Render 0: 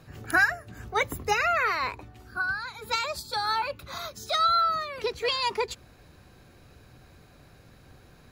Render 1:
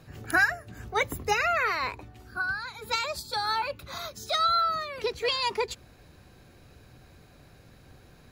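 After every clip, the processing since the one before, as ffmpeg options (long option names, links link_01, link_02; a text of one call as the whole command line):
ffmpeg -i in.wav -af "equalizer=frequency=1200:width_type=o:width=0.77:gain=-2" out.wav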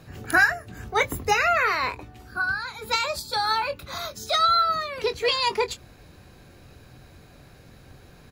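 ffmpeg -i in.wav -filter_complex "[0:a]asplit=2[link_01][link_02];[link_02]adelay=23,volume=-11dB[link_03];[link_01][link_03]amix=inputs=2:normalize=0,volume=4dB" out.wav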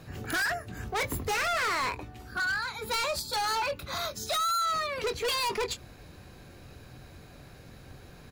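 ffmpeg -i in.wav -af "volume=27dB,asoftclip=hard,volume=-27dB" out.wav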